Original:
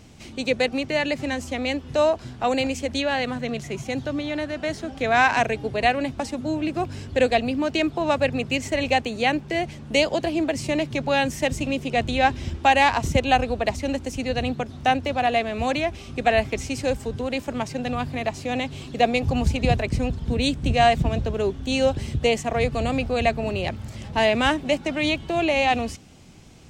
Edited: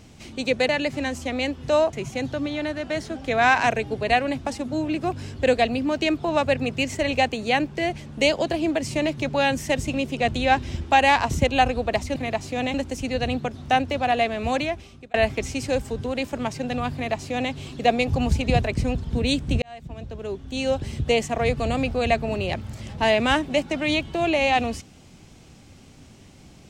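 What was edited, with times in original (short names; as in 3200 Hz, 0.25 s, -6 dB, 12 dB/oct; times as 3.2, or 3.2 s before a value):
0.69–0.95 cut
2.19–3.66 cut
15.71–16.29 fade out
18.09–18.67 copy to 13.89
20.77–22.32 fade in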